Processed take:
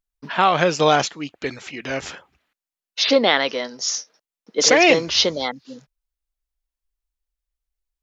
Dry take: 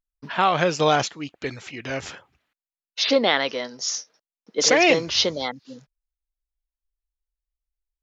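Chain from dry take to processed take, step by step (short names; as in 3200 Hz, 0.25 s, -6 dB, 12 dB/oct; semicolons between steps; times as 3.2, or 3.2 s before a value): bell 110 Hz -14 dB 0.3 oct; gain +3 dB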